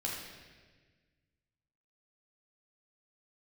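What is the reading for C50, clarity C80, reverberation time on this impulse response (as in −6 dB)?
1.0 dB, 3.5 dB, 1.4 s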